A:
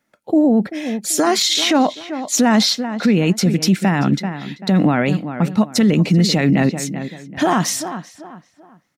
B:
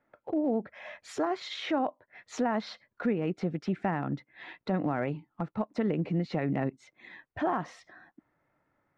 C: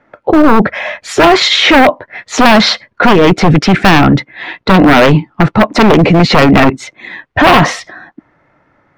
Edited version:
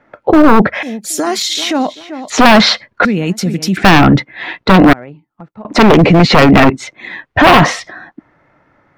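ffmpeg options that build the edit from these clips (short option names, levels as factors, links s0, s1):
-filter_complex "[0:a]asplit=2[s0][s1];[2:a]asplit=4[s2][s3][s4][s5];[s2]atrim=end=0.832[s6];[s0]atrim=start=0.828:end=2.302[s7];[s3]atrim=start=2.298:end=3.052[s8];[s1]atrim=start=3.048:end=3.772[s9];[s4]atrim=start=3.768:end=4.932[s10];[1:a]atrim=start=4.928:end=5.652[s11];[s5]atrim=start=5.648[s12];[s6][s7]acrossfade=d=0.004:c1=hsin:c2=hsin[s13];[s13][s8]acrossfade=d=0.004:c1=hsin:c2=hsin[s14];[s14][s9]acrossfade=d=0.004:c1=hsin:c2=hsin[s15];[s15][s10]acrossfade=d=0.004:c1=hsin:c2=hsin[s16];[s16][s11]acrossfade=d=0.004:c1=hsin:c2=hsin[s17];[s17][s12]acrossfade=d=0.004:c1=hsin:c2=hsin"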